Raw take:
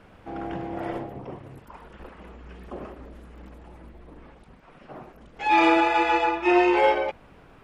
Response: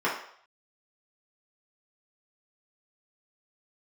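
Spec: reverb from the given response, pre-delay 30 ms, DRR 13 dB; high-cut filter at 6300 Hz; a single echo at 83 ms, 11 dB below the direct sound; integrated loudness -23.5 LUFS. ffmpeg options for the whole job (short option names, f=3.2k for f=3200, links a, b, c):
-filter_complex "[0:a]lowpass=6.3k,aecho=1:1:83:0.282,asplit=2[a][b];[1:a]atrim=start_sample=2205,adelay=30[c];[b][c]afir=irnorm=-1:irlink=0,volume=-26dB[d];[a][d]amix=inputs=2:normalize=0,volume=-1.5dB"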